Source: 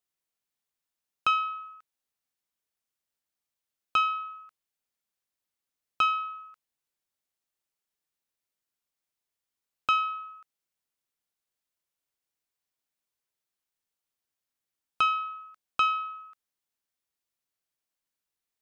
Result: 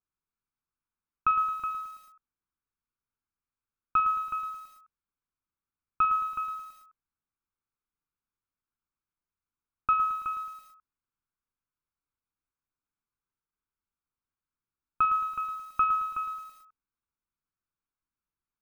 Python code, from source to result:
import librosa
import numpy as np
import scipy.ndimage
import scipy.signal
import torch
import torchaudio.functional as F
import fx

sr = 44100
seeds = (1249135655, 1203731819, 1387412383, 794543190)

p1 = scipy.signal.sosfilt(scipy.signal.butter(4, 1900.0, 'lowpass', fs=sr, output='sos'), x)
p2 = fx.low_shelf(p1, sr, hz=67.0, db=10.5)
p3 = p2 + 0.71 * np.pad(p2, (int(0.8 * sr / 1000.0), 0))[:len(p2)]
p4 = p3 + fx.echo_multitap(p3, sr, ms=(45, 96, 371), db=(-12.5, -19.0, -9.5), dry=0)
p5 = fx.echo_crushed(p4, sr, ms=110, feedback_pct=55, bits=8, wet_db=-9)
y = p5 * 10.0 ** (-3.5 / 20.0)